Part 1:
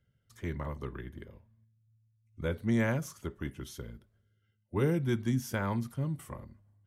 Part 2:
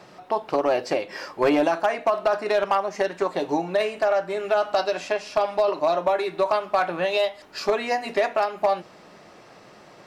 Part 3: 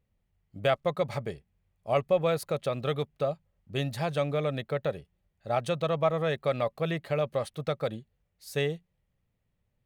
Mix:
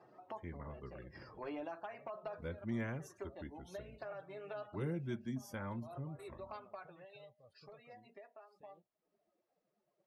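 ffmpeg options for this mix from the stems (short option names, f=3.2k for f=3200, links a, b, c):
-filter_complex "[0:a]volume=-7dB,asplit=2[a][b];[1:a]acompressor=threshold=-38dB:ratio=2,volume=-9dB,afade=t=out:st=6.55:d=0.45:silence=0.281838[c];[2:a]acrossover=split=400|4900[d][e][f];[d]acompressor=threshold=-40dB:ratio=4[g];[e]acompressor=threshold=-36dB:ratio=4[h];[f]acompressor=threshold=-55dB:ratio=4[i];[g][h][i]amix=inputs=3:normalize=0,alimiter=level_in=10.5dB:limit=-24dB:level=0:latency=1:release=17,volume=-10.5dB,adelay=50,volume=-17dB[j];[b]apad=whole_len=443974[k];[c][k]sidechaincompress=threshold=-53dB:ratio=5:attack=8.7:release=136[l];[a][l][j]amix=inputs=3:normalize=0,afftdn=nr=19:nf=-58,flanger=delay=2.4:depth=4.4:regen=-52:speed=0.33:shape=triangular"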